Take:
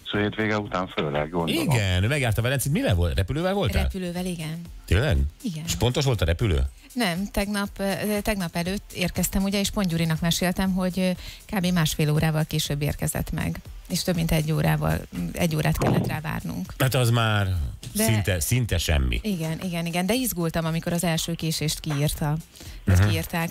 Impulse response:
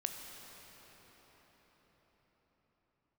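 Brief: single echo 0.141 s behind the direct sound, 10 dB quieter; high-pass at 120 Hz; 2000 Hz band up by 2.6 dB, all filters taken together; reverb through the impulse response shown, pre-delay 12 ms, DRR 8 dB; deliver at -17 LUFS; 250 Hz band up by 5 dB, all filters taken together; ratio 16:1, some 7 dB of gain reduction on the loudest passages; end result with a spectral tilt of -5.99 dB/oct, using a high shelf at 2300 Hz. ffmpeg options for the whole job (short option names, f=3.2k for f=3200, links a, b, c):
-filter_complex "[0:a]highpass=120,equalizer=f=250:t=o:g=8.5,equalizer=f=2k:t=o:g=7.5,highshelf=f=2.3k:g=-8.5,acompressor=threshold=-21dB:ratio=16,aecho=1:1:141:0.316,asplit=2[a][b];[1:a]atrim=start_sample=2205,adelay=12[c];[b][c]afir=irnorm=-1:irlink=0,volume=-8.5dB[d];[a][d]amix=inputs=2:normalize=0,volume=8.5dB"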